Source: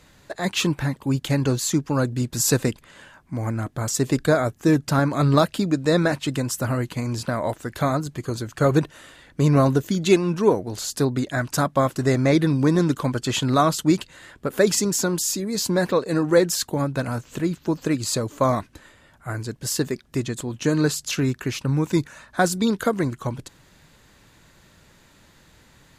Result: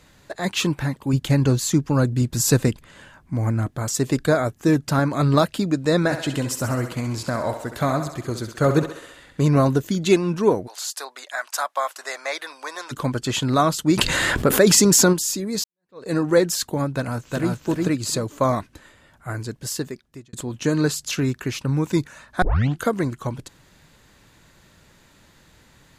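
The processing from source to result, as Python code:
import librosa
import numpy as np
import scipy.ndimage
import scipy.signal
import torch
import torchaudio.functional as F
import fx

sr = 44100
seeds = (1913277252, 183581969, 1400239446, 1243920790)

y = fx.low_shelf(x, sr, hz=190.0, db=7.0, at=(1.13, 3.71))
y = fx.echo_thinned(y, sr, ms=66, feedback_pct=62, hz=310.0, wet_db=-8.5, at=(6.04, 9.47))
y = fx.highpass(y, sr, hz=700.0, slope=24, at=(10.66, 12.91), fade=0.02)
y = fx.env_flatten(y, sr, amount_pct=70, at=(13.96, 15.12), fade=0.02)
y = fx.echo_throw(y, sr, start_s=16.95, length_s=0.58, ms=360, feedback_pct=20, wet_db=-1.5)
y = fx.edit(y, sr, fx.fade_in_span(start_s=15.64, length_s=0.42, curve='exp'),
    fx.fade_out_span(start_s=19.49, length_s=0.84),
    fx.tape_start(start_s=22.42, length_s=0.41), tone=tone)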